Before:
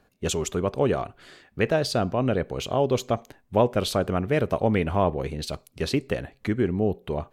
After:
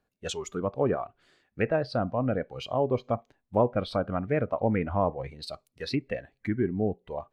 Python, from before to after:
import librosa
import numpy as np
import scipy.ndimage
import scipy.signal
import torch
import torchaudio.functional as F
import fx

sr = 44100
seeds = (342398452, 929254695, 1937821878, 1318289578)

y = fx.noise_reduce_blind(x, sr, reduce_db=12)
y = fx.env_lowpass_down(y, sr, base_hz=2200.0, full_db=-20.5)
y = y * 10.0 ** (-3.0 / 20.0)